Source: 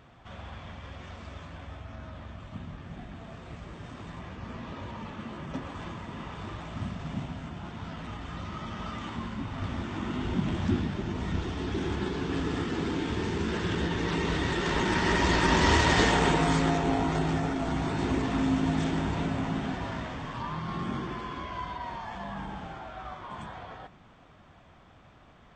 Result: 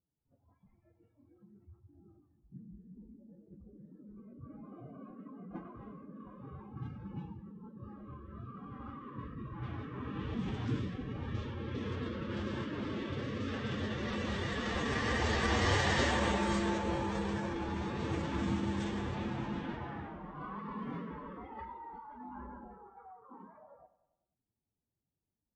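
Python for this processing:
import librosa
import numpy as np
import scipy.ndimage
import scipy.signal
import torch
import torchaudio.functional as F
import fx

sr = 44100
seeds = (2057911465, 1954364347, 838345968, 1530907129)

p1 = fx.noise_reduce_blind(x, sr, reduce_db=26)
p2 = fx.pitch_keep_formants(p1, sr, semitones=4.0)
p3 = fx.env_lowpass(p2, sr, base_hz=420.0, full_db=-23.5)
p4 = p3 + fx.echo_feedback(p3, sr, ms=97, feedback_pct=57, wet_db=-16.0, dry=0)
y = p4 * 10.0 ** (-7.0 / 20.0)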